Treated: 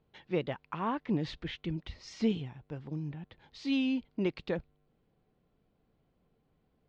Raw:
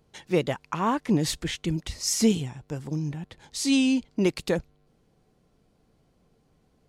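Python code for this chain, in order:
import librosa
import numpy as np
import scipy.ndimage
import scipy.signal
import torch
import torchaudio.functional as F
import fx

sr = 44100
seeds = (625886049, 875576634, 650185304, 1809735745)

y = scipy.signal.sosfilt(scipy.signal.butter(4, 3800.0, 'lowpass', fs=sr, output='sos'), x)
y = y * 10.0 ** (-8.0 / 20.0)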